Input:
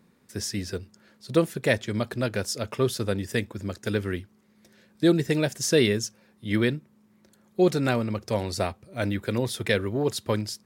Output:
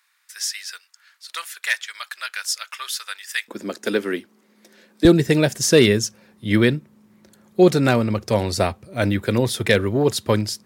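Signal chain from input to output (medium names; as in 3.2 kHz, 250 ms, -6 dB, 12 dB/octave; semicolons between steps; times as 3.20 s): overload inside the chain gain 11.5 dB; high-pass 1.3 kHz 24 dB/octave, from 3.48 s 230 Hz, from 5.05 s 44 Hz; trim +7 dB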